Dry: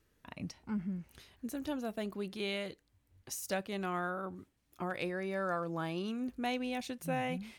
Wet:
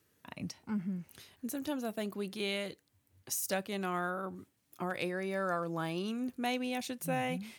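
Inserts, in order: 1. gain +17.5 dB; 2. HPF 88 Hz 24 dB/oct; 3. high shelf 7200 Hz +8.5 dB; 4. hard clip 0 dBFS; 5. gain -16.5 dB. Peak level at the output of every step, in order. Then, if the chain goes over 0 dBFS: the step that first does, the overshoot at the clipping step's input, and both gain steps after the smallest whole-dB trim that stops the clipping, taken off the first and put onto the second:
-3.5, -5.0, -4.5, -4.5, -21.0 dBFS; no overload

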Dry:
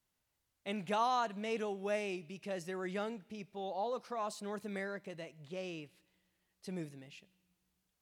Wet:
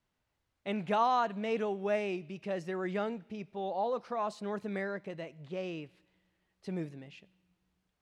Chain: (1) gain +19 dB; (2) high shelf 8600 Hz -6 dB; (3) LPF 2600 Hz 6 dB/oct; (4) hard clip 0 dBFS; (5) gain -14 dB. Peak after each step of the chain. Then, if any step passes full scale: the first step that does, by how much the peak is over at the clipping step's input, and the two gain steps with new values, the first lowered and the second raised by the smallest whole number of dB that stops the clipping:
-3.0, -3.0, -3.5, -3.5, -17.5 dBFS; no overload

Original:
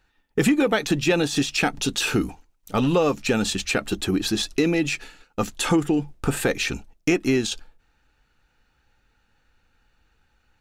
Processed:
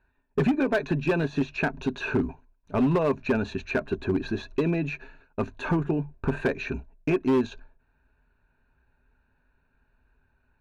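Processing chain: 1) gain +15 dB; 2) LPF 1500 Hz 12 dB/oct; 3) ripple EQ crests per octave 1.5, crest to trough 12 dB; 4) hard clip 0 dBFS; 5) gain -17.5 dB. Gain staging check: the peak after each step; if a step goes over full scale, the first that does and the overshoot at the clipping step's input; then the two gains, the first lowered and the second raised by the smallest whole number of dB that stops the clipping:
+6.0, +5.0, +9.5, 0.0, -17.5 dBFS; step 1, 9.5 dB; step 1 +5 dB, step 5 -7.5 dB

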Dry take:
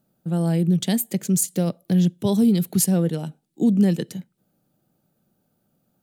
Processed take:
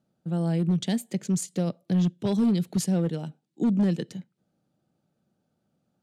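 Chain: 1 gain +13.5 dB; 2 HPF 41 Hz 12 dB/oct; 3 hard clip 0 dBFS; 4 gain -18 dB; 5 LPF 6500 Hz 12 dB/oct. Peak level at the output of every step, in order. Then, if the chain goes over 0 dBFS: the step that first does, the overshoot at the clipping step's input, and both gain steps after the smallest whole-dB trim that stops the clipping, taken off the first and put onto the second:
+5.0, +5.0, 0.0, -18.0, -17.5 dBFS; step 1, 5.0 dB; step 1 +8.5 dB, step 4 -13 dB

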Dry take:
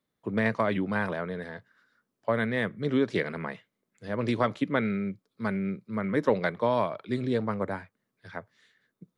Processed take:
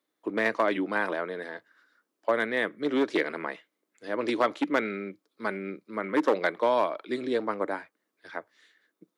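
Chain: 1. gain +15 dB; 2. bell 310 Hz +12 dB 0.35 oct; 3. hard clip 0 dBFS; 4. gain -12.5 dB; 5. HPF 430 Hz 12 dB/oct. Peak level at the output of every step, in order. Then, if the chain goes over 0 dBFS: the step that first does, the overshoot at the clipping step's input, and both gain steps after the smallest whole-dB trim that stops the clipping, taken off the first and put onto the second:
+3.0, +7.0, 0.0, -12.5, -10.5 dBFS; step 1, 7.0 dB; step 1 +8 dB, step 4 -5.5 dB

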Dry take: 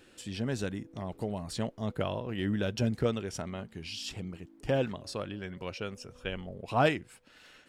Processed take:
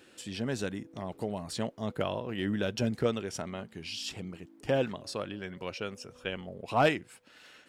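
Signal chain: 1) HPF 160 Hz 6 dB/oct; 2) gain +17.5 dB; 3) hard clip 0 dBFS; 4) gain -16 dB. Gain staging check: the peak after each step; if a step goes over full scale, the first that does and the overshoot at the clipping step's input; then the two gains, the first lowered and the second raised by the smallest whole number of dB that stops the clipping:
-13.5, +4.0, 0.0, -16.0 dBFS; step 2, 4.0 dB; step 2 +13.5 dB, step 4 -12 dB

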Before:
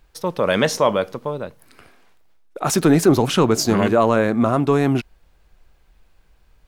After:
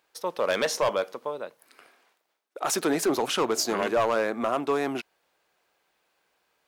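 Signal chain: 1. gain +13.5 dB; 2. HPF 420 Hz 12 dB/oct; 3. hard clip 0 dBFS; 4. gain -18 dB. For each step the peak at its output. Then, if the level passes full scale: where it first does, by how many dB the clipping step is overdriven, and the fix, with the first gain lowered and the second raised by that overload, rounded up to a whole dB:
+9.0, +9.5, 0.0, -18.0 dBFS; step 1, 9.5 dB; step 1 +3.5 dB, step 4 -8 dB

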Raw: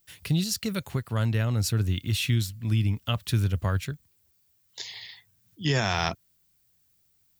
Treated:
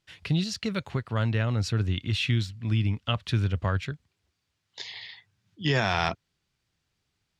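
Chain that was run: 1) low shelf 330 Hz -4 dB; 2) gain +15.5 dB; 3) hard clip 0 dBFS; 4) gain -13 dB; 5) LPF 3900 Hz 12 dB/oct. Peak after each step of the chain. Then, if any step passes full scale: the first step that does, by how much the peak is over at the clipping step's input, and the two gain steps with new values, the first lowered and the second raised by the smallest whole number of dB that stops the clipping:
-11.0, +4.5, 0.0, -13.0, -12.5 dBFS; step 2, 4.5 dB; step 2 +10.5 dB, step 4 -8 dB

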